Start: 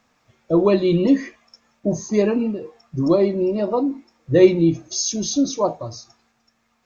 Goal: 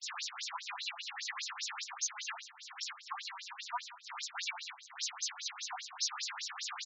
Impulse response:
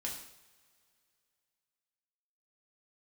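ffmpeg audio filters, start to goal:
-filter_complex "[0:a]aeval=exprs='val(0)+0.5*0.075*sgn(val(0))':c=same,highpass=740,agate=range=0.00447:threshold=0.0355:ratio=16:detection=peak,highshelf=f=2800:g=10,aeval=exprs='0.126*(abs(mod(val(0)/0.126+3,4)-2)-1)':c=same,aeval=exprs='(tanh(25.1*val(0)+0.75)-tanh(0.75))/25.1':c=same,aecho=1:1:90|180|270|360|450|540:0.224|0.128|0.0727|0.0415|0.0236|0.0135,asplit=2[s0][s1];[1:a]atrim=start_sample=2205,atrim=end_sample=6615[s2];[s1][s2]afir=irnorm=-1:irlink=0,volume=0.447[s3];[s0][s3]amix=inputs=2:normalize=0,afftfilt=real='re*between(b*sr/1024,950*pow(5500/950,0.5+0.5*sin(2*PI*5*pts/sr))/1.41,950*pow(5500/950,0.5+0.5*sin(2*PI*5*pts/sr))*1.41)':imag='im*between(b*sr/1024,950*pow(5500/950,0.5+0.5*sin(2*PI*5*pts/sr))/1.41,950*pow(5500/950,0.5+0.5*sin(2*PI*5*pts/sr))*1.41)':win_size=1024:overlap=0.75,volume=0.75"

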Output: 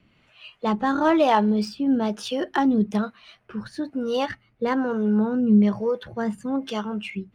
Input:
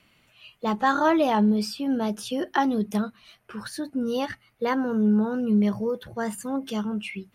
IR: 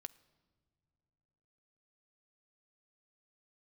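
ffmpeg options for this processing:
-filter_complex "[0:a]adynamicsmooth=sensitivity=4:basefreq=5100,acrossover=split=410[s0][s1];[s0]aeval=exprs='val(0)*(1-0.7/2+0.7/2*cos(2*PI*1.1*n/s))':c=same[s2];[s1]aeval=exprs='val(0)*(1-0.7/2-0.7/2*cos(2*PI*1.1*n/s))':c=same[s3];[s2][s3]amix=inputs=2:normalize=0,volume=2"

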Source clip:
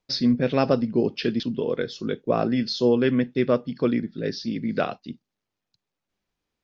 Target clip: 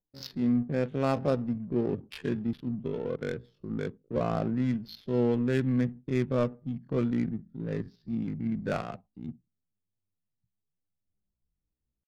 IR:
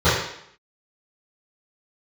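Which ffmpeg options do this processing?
-af "adynamicsmooth=sensitivity=2.5:basefreq=600,atempo=0.55,asubboost=boost=3:cutoff=180,volume=0.473"

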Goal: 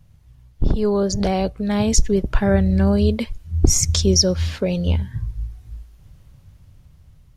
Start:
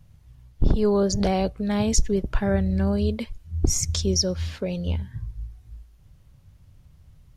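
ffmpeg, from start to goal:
-af "dynaudnorm=f=520:g=7:m=2.82,volume=1.12"

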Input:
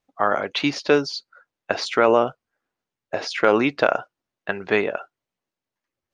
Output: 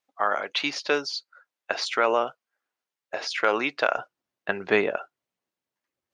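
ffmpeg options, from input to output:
-af "asetnsamples=n=441:p=0,asendcmd='3.97 highpass f 130',highpass=f=900:p=1,volume=0.891"

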